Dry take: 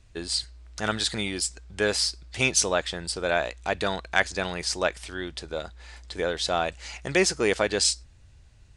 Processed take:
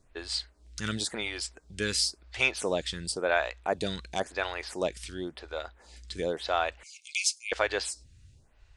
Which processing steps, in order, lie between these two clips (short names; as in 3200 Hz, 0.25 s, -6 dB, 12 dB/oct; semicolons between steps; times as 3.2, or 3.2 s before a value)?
6.83–7.52 brick-wall FIR high-pass 2100 Hz; photocell phaser 0.95 Hz